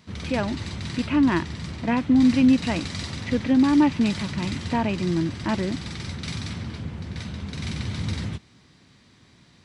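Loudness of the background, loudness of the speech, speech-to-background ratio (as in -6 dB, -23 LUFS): -32.5 LUFS, -23.0 LUFS, 9.5 dB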